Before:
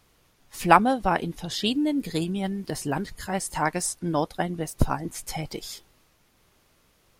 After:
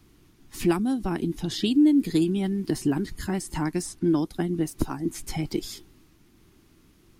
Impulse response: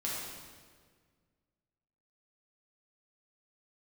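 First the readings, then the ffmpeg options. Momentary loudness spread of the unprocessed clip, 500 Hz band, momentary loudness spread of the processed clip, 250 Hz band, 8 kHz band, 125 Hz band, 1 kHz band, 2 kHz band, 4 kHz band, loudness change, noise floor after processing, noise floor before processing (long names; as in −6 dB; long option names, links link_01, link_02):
14 LU, −1.5 dB, 11 LU, +5.0 dB, −4.5 dB, +0.5 dB, −13.0 dB, −8.5 dB, −3.0 dB, +0.5 dB, −59 dBFS, −64 dBFS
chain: -filter_complex "[0:a]acrossover=split=350|4600[link_01][link_02][link_03];[link_01]acompressor=threshold=-37dB:ratio=4[link_04];[link_02]acompressor=threshold=-31dB:ratio=4[link_05];[link_03]acompressor=threshold=-37dB:ratio=4[link_06];[link_04][link_05][link_06]amix=inputs=3:normalize=0,lowshelf=frequency=420:width_type=q:width=3:gain=7.5"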